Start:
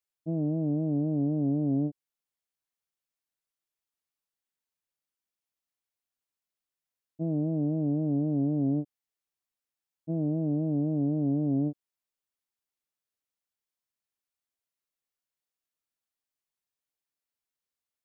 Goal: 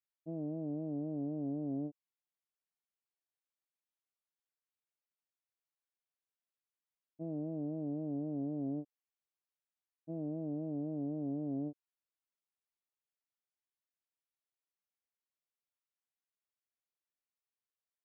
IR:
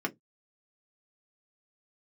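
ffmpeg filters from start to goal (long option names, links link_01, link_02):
-af "bass=frequency=250:gain=-8,treble=frequency=4000:gain=-9,volume=-7dB"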